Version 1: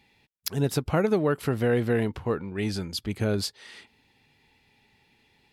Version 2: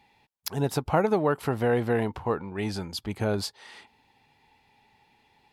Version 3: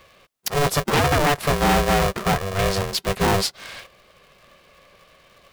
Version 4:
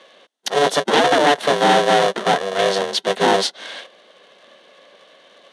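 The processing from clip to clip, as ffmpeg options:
-af "equalizer=f=860:t=o:w=0.91:g=10.5,volume=0.75"
-af "aeval=exprs='0.335*sin(PI/2*3.55*val(0)/0.335)':c=same,aeval=exprs='val(0)*sgn(sin(2*PI*290*n/s))':c=same,volume=0.596"
-af "highpass=f=250:w=0.5412,highpass=f=250:w=1.3066,equalizer=f=370:t=q:w=4:g=-3,equalizer=f=1200:t=q:w=4:g=-8,equalizer=f=2400:t=q:w=4:g=-9,equalizer=f=3400:t=q:w=4:g=4,equalizer=f=5000:t=q:w=4:g=-8,equalizer=f=7400:t=q:w=4:g=-9,lowpass=f=8100:w=0.5412,lowpass=f=8100:w=1.3066,volume=2.24"

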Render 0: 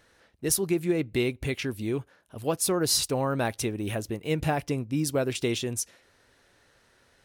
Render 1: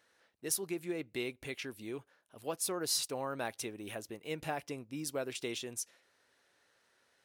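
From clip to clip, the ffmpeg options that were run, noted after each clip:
-af "highpass=f=430:p=1,volume=0.398"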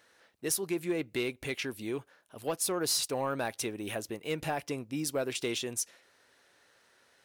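-filter_complex "[0:a]asplit=2[s0][s1];[s1]alimiter=level_in=1.26:limit=0.0631:level=0:latency=1:release=263,volume=0.794,volume=1.19[s2];[s0][s2]amix=inputs=2:normalize=0,asoftclip=type=tanh:threshold=0.0944"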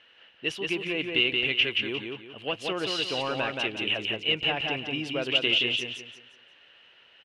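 -filter_complex "[0:a]lowpass=f=2900:t=q:w=12,asplit=2[s0][s1];[s1]aecho=0:1:176|352|528|704:0.668|0.214|0.0684|0.0219[s2];[s0][s2]amix=inputs=2:normalize=0"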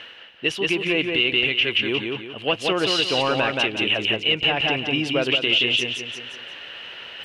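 -af "areverse,acompressor=mode=upward:threshold=0.0178:ratio=2.5,areverse,alimiter=limit=0.133:level=0:latency=1:release=142,volume=2.66"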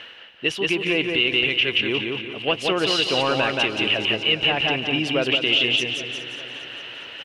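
-af "aecho=1:1:408|816|1224|1632|2040:0.188|0.104|0.057|0.0313|0.0172"

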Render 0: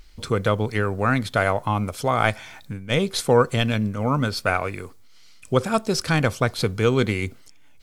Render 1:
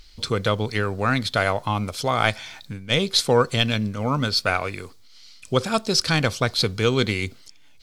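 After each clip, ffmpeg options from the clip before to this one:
-af "equalizer=f=4300:t=o:w=1.2:g=10.5,volume=0.841"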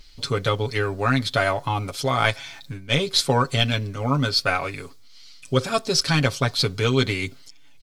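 -af "aecho=1:1:7.2:0.77,volume=0.794"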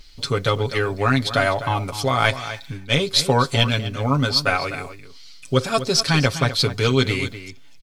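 -filter_complex "[0:a]asplit=2[s0][s1];[s1]adelay=250.7,volume=0.251,highshelf=f=4000:g=-5.64[s2];[s0][s2]amix=inputs=2:normalize=0,volume=1.26"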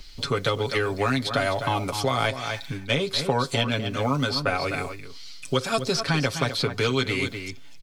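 -filter_complex "[0:a]acrossover=split=170|710|2600[s0][s1][s2][s3];[s0]acompressor=threshold=0.0141:ratio=4[s4];[s1]acompressor=threshold=0.0398:ratio=4[s5];[s2]acompressor=threshold=0.0282:ratio=4[s6];[s3]acompressor=threshold=0.02:ratio=4[s7];[s4][s5][s6][s7]amix=inputs=4:normalize=0,volume=1.33"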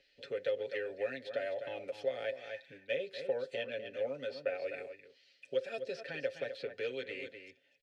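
-filter_complex "[0:a]asplit=3[s0][s1][s2];[s0]bandpass=f=530:t=q:w=8,volume=1[s3];[s1]bandpass=f=1840:t=q:w=8,volume=0.501[s4];[s2]bandpass=f=2480:t=q:w=8,volume=0.355[s5];[s3][s4][s5]amix=inputs=3:normalize=0,volume=0.708"

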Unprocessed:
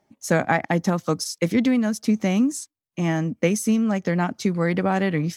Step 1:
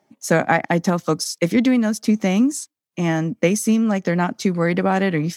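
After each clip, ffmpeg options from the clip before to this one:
-af "highpass=140,volume=1.5"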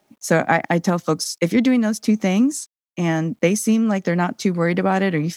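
-af "acrusher=bits=10:mix=0:aa=0.000001"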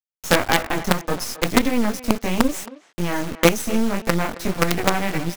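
-filter_complex "[0:a]flanger=delay=17:depth=5.5:speed=1.7,acrusher=bits=3:dc=4:mix=0:aa=0.000001,asplit=2[s0][s1];[s1]adelay=270,highpass=300,lowpass=3400,asoftclip=type=hard:threshold=0.224,volume=0.178[s2];[s0][s2]amix=inputs=2:normalize=0,volume=1.5"

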